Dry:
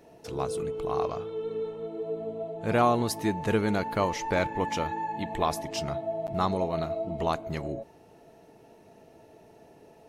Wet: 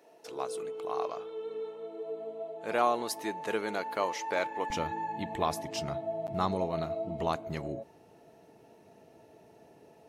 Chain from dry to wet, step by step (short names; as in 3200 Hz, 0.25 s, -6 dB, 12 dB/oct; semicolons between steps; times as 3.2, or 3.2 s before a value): HPF 400 Hz 12 dB/oct, from 4.7 s 77 Hz; gain -3 dB